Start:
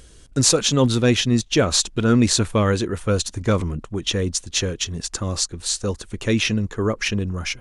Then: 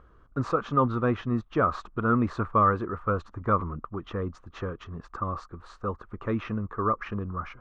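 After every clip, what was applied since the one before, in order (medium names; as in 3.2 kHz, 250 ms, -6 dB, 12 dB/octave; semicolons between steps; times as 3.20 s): resonant low-pass 1.2 kHz, resonance Q 7.4; trim -9 dB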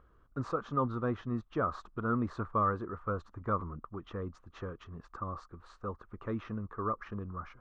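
dynamic bell 2.5 kHz, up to -7 dB, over -49 dBFS, Q 2.2; trim -7.5 dB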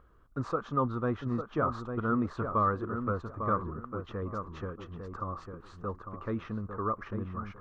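filtered feedback delay 851 ms, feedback 23%, low-pass 1.7 kHz, level -6.5 dB; trim +2 dB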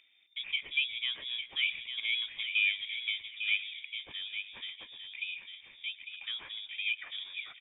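bass shelf 330 Hz -10 dB; frequency-shifting echo 119 ms, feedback 56%, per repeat +64 Hz, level -20 dB; frequency inversion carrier 3.6 kHz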